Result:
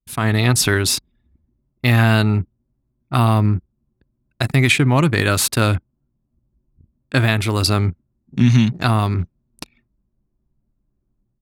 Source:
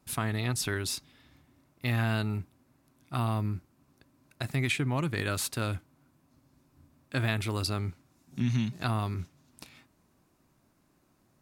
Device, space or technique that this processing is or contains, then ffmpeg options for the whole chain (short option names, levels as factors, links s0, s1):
voice memo with heavy noise removal: -af "anlmdn=0.0251,dynaudnorm=f=140:g=3:m=6.31"